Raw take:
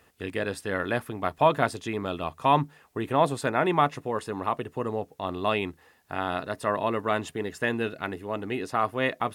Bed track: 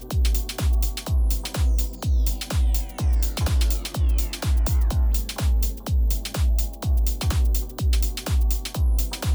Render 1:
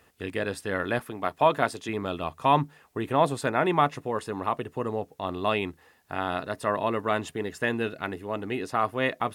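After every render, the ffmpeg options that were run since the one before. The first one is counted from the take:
-filter_complex "[0:a]asettb=1/sr,asplit=3[s0][s1][s2];[s0]atrim=end=0.994[s3];[s1]atrim=start=0.99:end=1.89,asetpts=PTS-STARTPTS,afade=t=in:d=0.004:c=qsin,afade=t=out:st=0.896:d=0.004:c=qsin,highpass=f=190:p=1[s4];[s2]atrim=start=1.886[s5];[s3][s4]acrossfade=d=0.004:c1=hsin:c2=qsin[s6];[s6][s5]acrossfade=d=0.004:c1=qsin:c2=hsin"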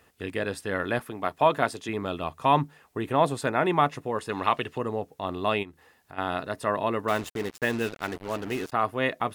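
-filter_complex "[0:a]asettb=1/sr,asplit=3[s0][s1][s2];[s0]atrim=end=4.294[s3];[s1]atrim=start=4.29:end=4.78,asetpts=PTS-STARTPTS,afade=t=in:d=0.004:c=qsin,afade=t=out:st=0.486:d=0.004:c=qsin,equalizer=f=3100:t=o:w=2.3:g=12[s4];[s2]atrim=start=4.776[s5];[s3][s4]acrossfade=d=0.004:c1=hsin:c2=qsin[s6];[s6][s5]acrossfade=d=0.004:c1=qsin:c2=hsin,asplit=3[s7][s8][s9];[s7]afade=t=out:st=5.62:d=0.02[s10];[s8]acompressor=threshold=0.00398:ratio=2:attack=3.2:release=140:knee=1:detection=peak,afade=t=in:st=5.62:d=0.02,afade=t=out:st=6.17:d=0.02[s11];[s9]afade=t=in:st=6.17:d=0.02[s12];[s10][s11][s12]amix=inputs=3:normalize=0,asettb=1/sr,asplit=3[s13][s14][s15];[s13]atrim=end=7.084[s16];[s14]atrim=start=7.08:end=8.72,asetpts=PTS-STARTPTS,afade=t=in:d=0.004:c=qsin,afade=t=out:st=1.636:d=0.004:c=qsin,acrusher=bits=5:mix=0:aa=0.5[s17];[s15]atrim=start=8.716[s18];[s16][s17]acrossfade=d=0.004:c1=hsin:c2=qsin[s19];[s19][s18]acrossfade=d=0.004:c1=qsin:c2=hsin"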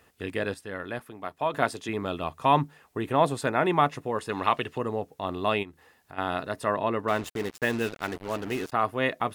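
-filter_complex "[0:a]asettb=1/sr,asplit=3[s0][s1][s2];[s0]atrim=end=6.744[s3];[s1]atrim=start=6.74:end=7.24,asetpts=PTS-STARTPTS,afade=t=in:d=0.004:c=qsin,afade=t=out:st=0.496:d=0.004:c=qsin,highshelf=f=5600:g=-8.5[s4];[s2]atrim=start=7.236[s5];[s3][s4]acrossfade=d=0.004:c1=hsin:c2=qsin[s6];[s6][s5]acrossfade=d=0.004:c1=qsin:c2=hsin,asplit=3[s7][s8][s9];[s7]atrim=end=0.542[s10];[s8]atrim=start=0.538:end=1.542,asetpts=PTS-STARTPTS,volume=0.447[s11];[s9]atrim=start=1.538[s12];[s10][s11]acrossfade=d=0.004:c1=hsin:c2=hsin[s13];[s13][s12]acrossfade=d=0.004:c1=hsin:c2=hsin"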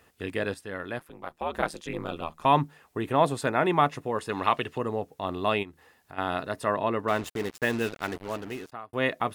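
-filter_complex "[0:a]asettb=1/sr,asplit=3[s0][s1][s2];[s0]atrim=end=0.994[s3];[s1]atrim=start=0.99:end=2.45,asetpts=PTS-STARTPTS,afade=t=in:d=0.004:c=qsin,afade=t=out:st=1.456:d=0.004:c=qsin,aeval=exprs='val(0)*sin(2*PI*78*n/s)':c=same[s4];[s2]atrim=start=2.446[s5];[s3][s4]acrossfade=d=0.004:c1=hsin:c2=qsin[s6];[s6][s5]acrossfade=d=0.004:c1=qsin:c2=hsin,asplit=2[s7][s8];[s7]atrim=end=8.93,asetpts=PTS-STARTPTS,afade=t=out:st=8.16:d=0.77[s9];[s8]atrim=start=8.93,asetpts=PTS-STARTPTS,afade=t=in:d=0.004:c=hsin[s10];[s9][s10]concat=n=2:v=0:a=1"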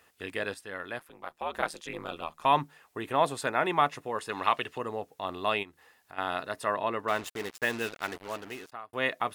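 -af "lowshelf=f=430:g=-10.5"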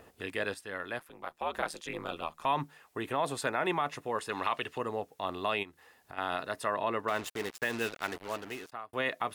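-filter_complex "[0:a]acrossover=split=750|1100[s0][s1][s2];[s0]acompressor=mode=upward:threshold=0.00501:ratio=2.5[s3];[s3][s1][s2]amix=inputs=3:normalize=0,alimiter=limit=0.106:level=0:latency=1:release=54"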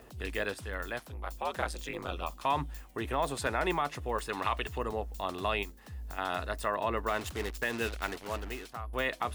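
-filter_complex "[1:a]volume=0.0841[s0];[0:a][s0]amix=inputs=2:normalize=0"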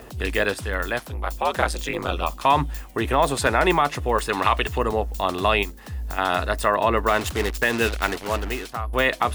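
-af "volume=3.76"

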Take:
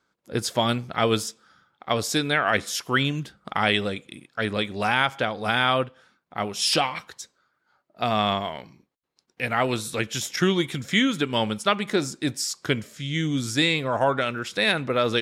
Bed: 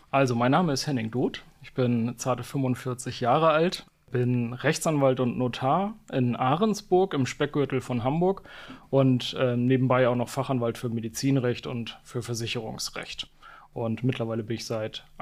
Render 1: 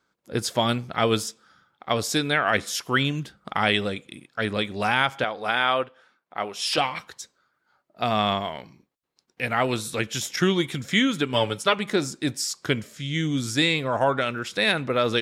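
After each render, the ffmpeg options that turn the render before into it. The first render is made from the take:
-filter_complex "[0:a]asettb=1/sr,asplit=3[s0][s1][s2];[s0]atrim=end=5.244[s3];[s1]atrim=start=5.24:end=6.78,asetpts=PTS-STARTPTS,afade=t=in:d=0.004:c=qsin,afade=t=out:st=1.536:d=0.004:c=qsin,bass=f=250:g=-13,treble=f=4000:g=-6[s4];[s2]atrim=start=6.776[s5];[s3][s4]acrossfade=d=0.004:c1=hsin:c2=qsin[s6];[s6][s5]acrossfade=d=0.004:c1=qsin:c2=hsin,asettb=1/sr,asplit=3[s7][s8][s9];[s7]atrim=end=11.334[s10];[s8]atrim=start=11.33:end=11.79,asetpts=PTS-STARTPTS,afade=t=in:d=0.004:c=qsin,afade=t=out:st=0.456:d=0.004:c=qsin,aecho=1:1:7:0.65,atrim=end_sample=20286[s11];[s9]atrim=start=11.786[s12];[s10][s11]acrossfade=d=0.004:c1=hsin:c2=qsin[s13];[s13][s12]acrossfade=d=0.004:c1=qsin:c2=hsin"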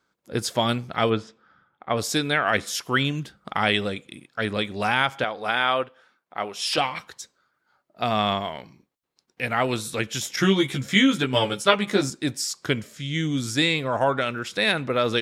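-filter_complex "[0:a]asplit=3[s0][s1][s2];[s0]afade=t=out:st=1.09:d=0.02[s3];[s1]lowpass=2200,afade=t=in:st=1.09:d=0.02,afade=t=out:st=1.96:d=0.02[s4];[s2]afade=t=in:st=1.96:d=0.02[s5];[s3][s4][s5]amix=inputs=3:normalize=0,asettb=1/sr,asplit=3[s6][s7][s8];[s6]atrim=end=10.364[s9];[s7]atrim=start=10.36:end=12.1,asetpts=PTS-STARTPTS,afade=t=in:d=0.004:c=qsin,afade=t=out:st=1.736:d=0.004:c=qsin,asplit=2[s10][s11];[s11]adelay=15,volume=0.75[s12];[s10][s12]amix=inputs=2:normalize=0,atrim=end_sample=76734[s13];[s8]atrim=start=12.096[s14];[s9][s13]acrossfade=d=0.004:c1=hsin:c2=qsin[s15];[s15][s14]acrossfade=d=0.004:c1=qsin:c2=hsin"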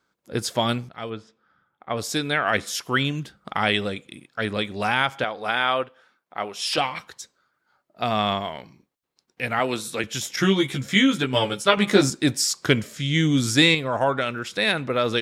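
-filter_complex "[0:a]asettb=1/sr,asplit=3[s0][s1][s2];[s0]atrim=end=9.594[s3];[s1]atrim=start=9.59:end=10.04,asetpts=PTS-STARTPTS,afade=t=in:d=0.004:c=qsin,afade=t=out:st=0.446:d=0.004:c=qsin,highpass=170[s4];[s2]atrim=start=10.036[s5];[s3][s4]acrossfade=d=0.004:c1=hsin:c2=qsin[s6];[s6][s5]acrossfade=d=0.004:c1=qsin:c2=hsin,asettb=1/sr,asplit=3[s7][s8][s9];[s7]atrim=end=11.774[s10];[s8]atrim=start=11.77:end=13.75,asetpts=PTS-STARTPTS,afade=t=in:d=0.004:c=qsin,afade=t=out:st=1.976:d=0.004:c=qsin,acontrast=35[s11];[s9]atrim=start=13.746[s12];[s10][s11]acrossfade=d=0.004:c1=hsin:c2=qsin[s13];[s13][s12]acrossfade=d=0.004:c1=qsin:c2=hsin,asplit=2[s14][s15];[s14]atrim=end=0.89,asetpts=PTS-STARTPTS,afade=t=out:st=0.886:d=0.004:c=hsin:silence=0.199526[s16];[s15]atrim=start=0.89,asetpts=PTS-STARTPTS,afade=t=in:d=1.6:silence=0.199526[s17];[s16][s17]concat=n=2:v=0:a=1"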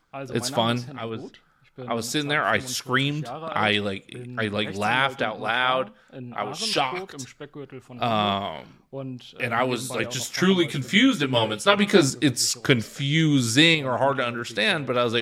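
-filter_complex "[1:a]volume=0.224[s0];[0:a][s0]amix=inputs=2:normalize=0"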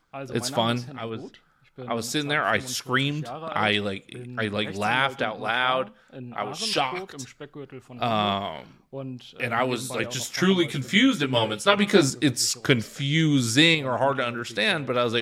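-af "volume=0.891"

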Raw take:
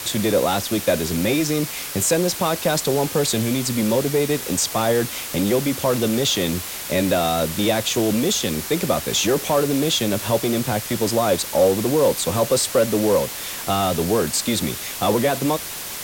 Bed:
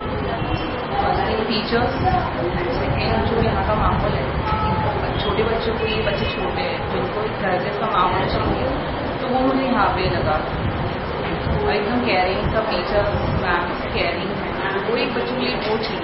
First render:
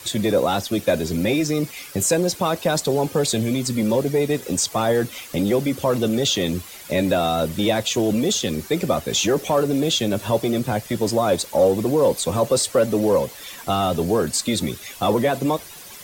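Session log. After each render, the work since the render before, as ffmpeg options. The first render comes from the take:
-af "afftdn=nr=12:nf=-31"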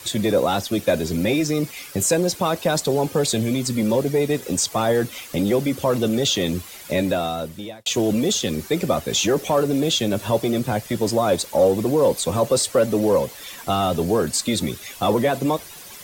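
-filter_complex "[0:a]asplit=2[s0][s1];[s0]atrim=end=7.86,asetpts=PTS-STARTPTS,afade=t=out:st=6.92:d=0.94[s2];[s1]atrim=start=7.86,asetpts=PTS-STARTPTS,afade=t=in:d=0.004:c=hsin[s3];[s2][s3]concat=n=2:v=0:a=1"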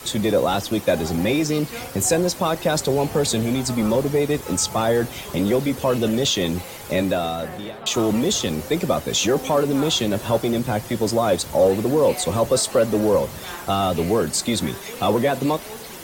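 -filter_complex "[1:a]volume=0.158[s0];[0:a][s0]amix=inputs=2:normalize=0"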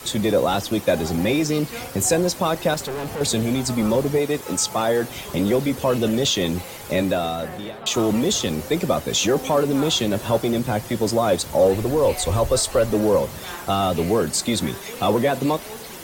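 -filter_complex "[0:a]asettb=1/sr,asplit=3[s0][s1][s2];[s0]atrim=end=2.744[s3];[s1]atrim=start=2.74:end=3.21,asetpts=PTS-STARTPTS,afade=t=in:d=0.004:c=qsin,afade=t=out:st=0.466:d=0.004:c=qsin,asoftclip=type=hard:threshold=0.0501[s4];[s2]atrim=start=3.206[s5];[s3][s4]acrossfade=d=0.004:c1=hsin:c2=qsin[s6];[s6][s5]acrossfade=d=0.004:c1=qsin:c2=hsin,asettb=1/sr,asplit=3[s7][s8][s9];[s7]atrim=end=4.184[s10];[s8]atrim=start=4.18:end=5.1,asetpts=PTS-STARTPTS,afade=t=in:d=0.004:c=qsin,afade=t=out:st=0.916:d=0.004:c=qsin,highpass=f=210:p=1[s11];[s9]atrim=start=5.096[s12];[s10][s11]acrossfade=d=0.004:c1=hsin:c2=qsin[s13];[s13][s12]acrossfade=d=0.004:c1=qsin:c2=hsin,asplit=3[s14][s15][s16];[s14]afade=t=out:st=11.73:d=0.02[s17];[s15]asubboost=boost=10.5:cutoff=56,afade=t=in:st=11.73:d=0.02,afade=t=out:st=12.9:d=0.02[s18];[s16]afade=t=in:st=12.9:d=0.02[s19];[s17][s18][s19]amix=inputs=3:normalize=0"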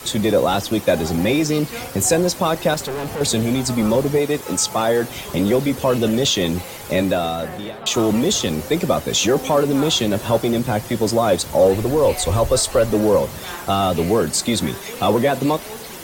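-af "volume=1.33"

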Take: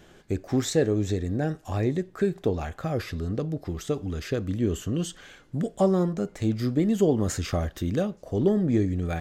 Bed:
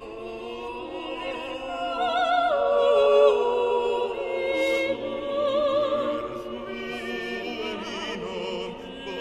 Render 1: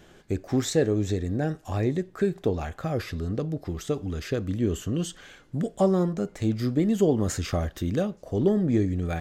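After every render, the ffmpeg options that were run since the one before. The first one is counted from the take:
-af anull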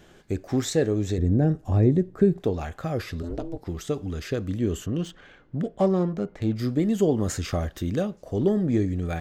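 -filter_complex "[0:a]asettb=1/sr,asplit=3[s0][s1][s2];[s0]atrim=end=1.184[s3];[s1]atrim=start=1.18:end=2.4,asetpts=PTS-STARTPTS,afade=t=in:d=0.004:c=qsin,afade=t=out:st=1.216:d=0.004:c=qsin,tiltshelf=f=700:g=8.5[s4];[s2]atrim=start=2.396[s5];[s3][s4]acrossfade=d=0.004:c1=hsin:c2=qsin[s6];[s6][s5]acrossfade=d=0.004:c1=qsin:c2=hsin,asplit=3[s7][s8][s9];[s7]afade=t=out:st=3.22:d=0.02[s10];[s8]aeval=exprs='val(0)*sin(2*PI*170*n/s)':c=same,afade=t=in:st=3.22:d=0.02,afade=t=out:st=3.65:d=0.02[s11];[s9]afade=t=in:st=3.65:d=0.02[s12];[s10][s11][s12]amix=inputs=3:normalize=0,asettb=1/sr,asplit=3[s13][s14][s15];[s13]atrim=end=4.864[s16];[s14]atrim=start=4.86:end=6.56,asetpts=PTS-STARTPTS,afade=t=in:d=0.004:c=qsin,afade=t=out:st=1.696:d=0.004:c=qsin,adynamicsmooth=sensitivity=6.5:basefreq=2400[s17];[s15]atrim=start=6.556[s18];[s16][s17]acrossfade=d=0.004:c1=hsin:c2=qsin[s19];[s19][s18]acrossfade=d=0.004:c1=qsin:c2=hsin"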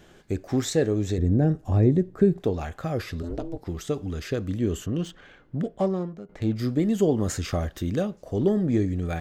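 -filter_complex "[0:a]asplit=2[s0][s1];[s0]atrim=end=6.29,asetpts=PTS-STARTPTS,afade=t=out:st=5.63:d=0.66:silence=0.149624[s2];[s1]atrim=start=6.29,asetpts=PTS-STARTPTS,afade=t=in:d=0.004:c=hsin:silence=0.149624[s3];[s2][s3]concat=n=2:v=0:a=1"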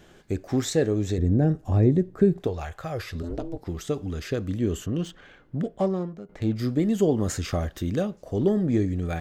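-filter_complex "[0:a]asettb=1/sr,asplit=3[s0][s1][s2];[s0]atrim=end=2.474[s3];[s1]atrim=start=2.47:end=3.15,asetpts=PTS-STARTPTS,afade=t=in:d=0.004:c=qsin,afade=t=out:st=0.676:d=0.004:c=qsin,equalizer=f=240:w=1.4:g=-13[s4];[s2]atrim=start=3.146[s5];[s3][s4]acrossfade=d=0.004:c1=hsin:c2=qsin[s6];[s6][s5]acrossfade=d=0.004:c1=qsin:c2=hsin"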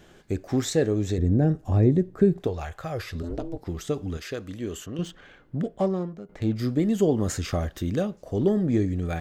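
-filter_complex "[0:a]asettb=1/sr,asplit=3[s0][s1][s2];[s0]atrim=end=4.174[s3];[s1]atrim=start=4.17:end=4.99,asetpts=PTS-STARTPTS,afade=t=in:d=0.004:c=qsin,afade=t=out:st=0.816:d=0.004:c=qsin,lowshelf=f=360:g=-11[s4];[s2]atrim=start=4.986[s5];[s3][s4]acrossfade=d=0.004:c1=hsin:c2=qsin[s6];[s6][s5]acrossfade=d=0.004:c1=qsin:c2=hsin"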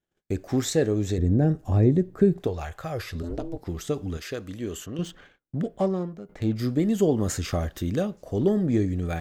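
-af "agate=range=0.0178:threshold=0.00398:ratio=16:detection=peak,highshelf=f=10000:g=5"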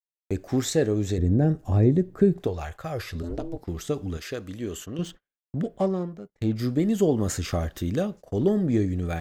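-af "agate=range=0.01:threshold=0.01:ratio=16:detection=peak"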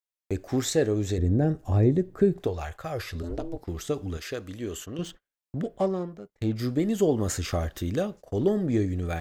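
-af "equalizer=f=180:w=1.2:g=-4"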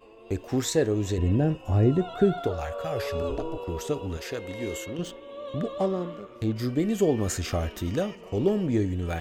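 -filter_complex "[1:a]volume=0.211[s0];[0:a][s0]amix=inputs=2:normalize=0"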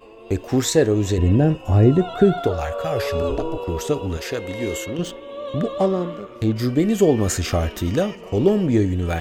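-af "volume=2.24,alimiter=limit=0.708:level=0:latency=1"

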